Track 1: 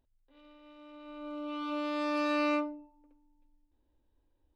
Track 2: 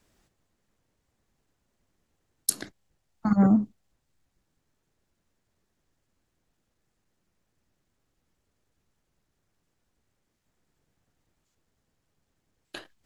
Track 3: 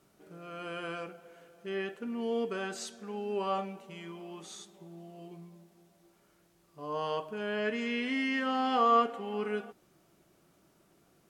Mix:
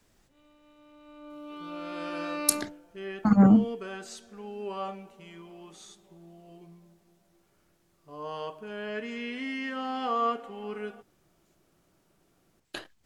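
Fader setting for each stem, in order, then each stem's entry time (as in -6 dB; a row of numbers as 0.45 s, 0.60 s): -4.5 dB, +2.0 dB, -3.0 dB; 0.00 s, 0.00 s, 1.30 s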